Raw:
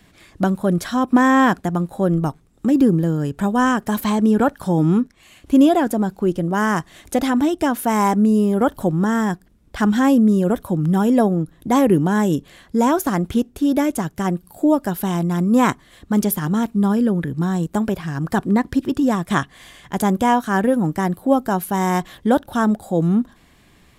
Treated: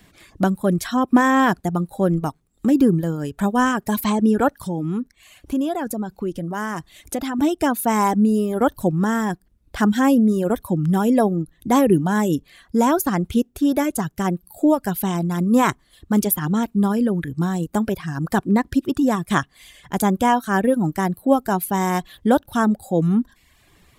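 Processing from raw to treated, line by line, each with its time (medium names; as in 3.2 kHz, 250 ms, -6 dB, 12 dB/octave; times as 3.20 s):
4.62–7.39 s: compression 2:1, threshold -25 dBFS
whole clip: reverb removal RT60 0.75 s; treble shelf 9.9 kHz +5 dB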